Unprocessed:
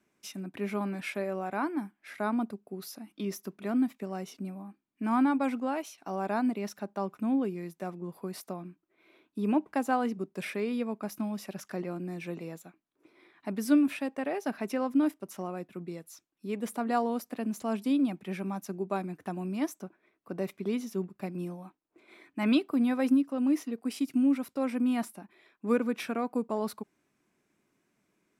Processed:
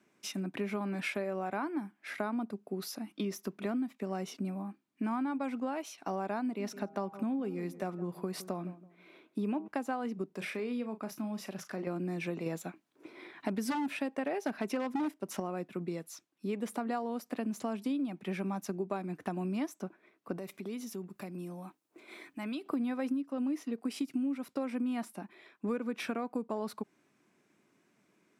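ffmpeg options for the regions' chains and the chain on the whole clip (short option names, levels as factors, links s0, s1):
-filter_complex "[0:a]asettb=1/sr,asplit=3[s0][s1][s2];[s0]atrim=end=6.434[s3];[s1]atrim=start=6.43:end=9.68,asetpts=PTS-STARTPTS,afade=t=in:d=0.004:c=qsin,afade=t=out:st=3.246:d=0.004:c=qsin,bandreject=f=159.5:t=h:w=4,bandreject=f=319:t=h:w=4,bandreject=f=478.5:t=h:w=4,bandreject=f=638:t=h:w=4,bandreject=f=797.5:t=h:w=4,bandreject=f=957:t=h:w=4,bandreject=f=1116.5:t=h:w=4,bandreject=f=1276:t=h:w=4,bandreject=f=1435.5:t=h:w=4,asplit=2[s4][s5];[s5]adelay=164,lowpass=f=990:p=1,volume=0.141,asplit=2[s6][s7];[s7]adelay=164,lowpass=f=990:p=1,volume=0.3,asplit=2[s8][s9];[s9]adelay=164,lowpass=f=990:p=1,volume=0.3[s10];[s4][s6][s8][s10]amix=inputs=4:normalize=0,atrim=end_sample=143325[s11];[s2]atrim=start=9.676[s12];[s3][s11]acrossfade=d=0.004:c1=hsin:c2=qsin[s13];[s13][s12]acrossfade=d=0.004:c1=qsin:c2=hsin,asettb=1/sr,asplit=3[s14][s15][s16];[s14]atrim=end=10.264[s17];[s15]atrim=start=10.26:end=11.87,asetpts=PTS-STARTPTS,afade=t=in:d=0.004:c=qsin,afade=t=out:st=1.606:d=0.004:c=qsin,acompressor=threshold=0.00316:ratio=1.5:attack=3.2:release=140:knee=1:detection=peak,asplit=2[s18][s19];[s19]adelay=37,volume=0.282[s20];[s18][s20]amix=inputs=2:normalize=0,atrim=end_sample=71001[s21];[s16]atrim=start=11.866[s22];[s17][s21]acrossfade=d=0.004:c1=hsin:c2=qsin[s23];[s23][s22]acrossfade=d=0.004:c1=qsin:c2=hsin,asettb=1/sr,asplit=3[s24][s25][s26];[s24]atrim=end=12.464[s27];[s25]atrim=start=12.46:end=15.4,asetpts=PTS-STARTPTS,afade=t=in:d=0.004:c=qsin,afade=t=out:st=2.936:d=0.004:c=qsin,bandreject=f=1200:w=18,acontrast=48,aeval=exprs='0.133*(abs(mod(val(0)/0.133+3,4)-2)-1)':c=same[s28];[s26]atrim=start=15.396[s29];[s27][s28]acrossfade=d=0.004:c1=hsin:c2=qsin[s30];[s30][s29]acrossfade=d=0.004:c1=qsin:c2=hsin,asettb=1/sr,asplit=3[s31][s32][s33];[s31]atrim=end=20.374[s34];[s32]atrim=start=20.37:end=22.66,asetpts=PTS-STARTPTS,afade=t=in:d=0.004:c=qsin,afade=t=out:st=2.286:d=0.004:c=qsin,highshelf=f=6600:g=11.5,acompressor=threshold=0.00562:ratio=3:attack=3.2:release=140:knee=1:detection=peak[s35];[s33]atrim=start=22.656[s36];[s34][s35]acrossfade=d=0.004:c1=hsin:c2=qsin[s37];[s37][s36]acrossfade=d=0.004:c1=qsin:c2=hsin,highpass=120,highshelf=f=11000:g=-9,acompressor=threshold=0.0158:ratio=6,volume=1.68"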